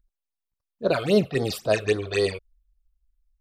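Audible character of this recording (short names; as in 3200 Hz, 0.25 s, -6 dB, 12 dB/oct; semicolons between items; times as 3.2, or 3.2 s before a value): phasing stages 8, 3.7 Hz, lowest notch 230–2600 Hz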